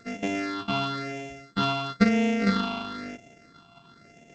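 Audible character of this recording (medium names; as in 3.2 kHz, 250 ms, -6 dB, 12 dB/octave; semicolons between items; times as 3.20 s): a buzz of ramps at a fixed pitch in blocks of 64 samples; phasing stages 6, 1 Hz, lowest notch 500–1200 Hz; G.722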